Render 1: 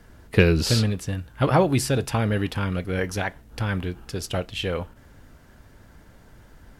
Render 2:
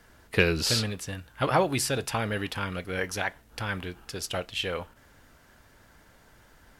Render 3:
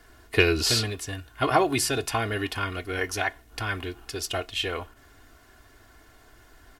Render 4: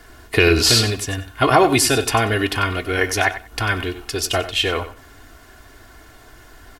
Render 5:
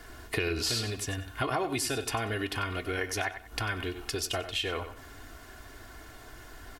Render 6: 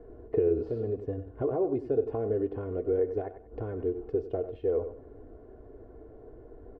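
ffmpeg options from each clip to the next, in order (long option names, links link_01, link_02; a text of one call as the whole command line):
ffmpeg -i in.wav -af "lowshelf=frequency=450:gain=-10.5" out.wav
ffmpeg -i in.wav -af "aecho=1:1:2.8:0.69,volume=1dB" out.wav
ffmpeg -i in.wav -af "aecho=1:1:94|188:0.224|0.0403,alimiter=level_in=10.5dB:limit=-1dB:release=50:level=0:latency=1,volume=-1.5dB" out.wav
ffmpeg -i in.wav -af "acompressor=threshold=-29dB:ratio=3,volume=-3dB" out.wav
ffmpeg -i in.wav -af "lowpass=frequency=470:width_type=q:width=4.6,volume=-2dB" out.wav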